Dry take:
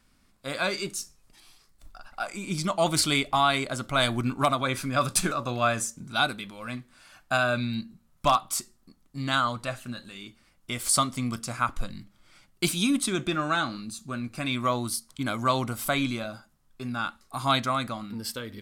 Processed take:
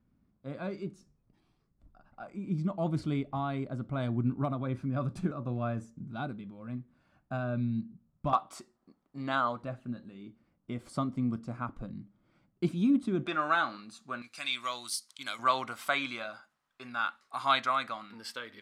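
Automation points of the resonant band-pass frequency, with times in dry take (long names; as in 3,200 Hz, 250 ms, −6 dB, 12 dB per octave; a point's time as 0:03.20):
resonant band-pass, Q 0.72
150 Hz
from 0:08.33 570 Hz
from 0:09.63 220 Hz
from 0:13.26 1,100 Hz
from 0:14.22 4,100 Hz
from 0:15.39 1,600 Hz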